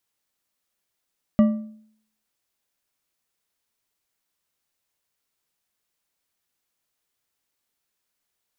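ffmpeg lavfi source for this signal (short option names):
-f lavfi -i "aevalsrc='0.316*pow(10,-3*t/0.62)*sin(2*PI*217*t)+0.1*pow(10,-3*t/0.457)*sin(2*PI*598.3*t)+0.0316*pow(10,-3*t/0.374)*sin(2*PI*1172.7*t)+0.01*pow(10,-3*t/0.321)*sin(2*PI*1938.5*t)+0.00316*pow(10,-3*t/0.285)*sin(2*PI*2894.8*t)':d=1.55:s=44100"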